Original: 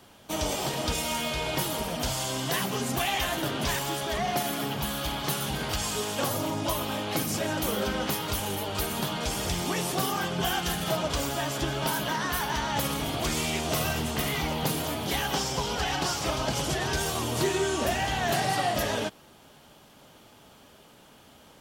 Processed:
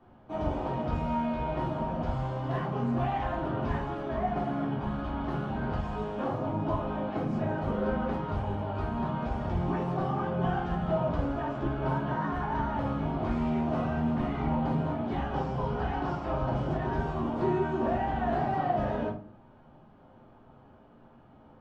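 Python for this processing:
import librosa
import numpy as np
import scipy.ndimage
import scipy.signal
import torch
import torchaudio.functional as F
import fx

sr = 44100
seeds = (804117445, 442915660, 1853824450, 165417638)

y = scipy.signal.sosfilt(scipy.signal.butter(2, 1100.0, 'lowpass', fs=sr, output='sos'), x)
y = fx.notch(y, sr, hz=450.0, q=12.0)
y = fx.room_shoebox(y, sr, seeds[0], volume_m3=250.0, walls='furnished', distance_m=3.4)
y = y * 10.0 ** (-7.0 / 20.0)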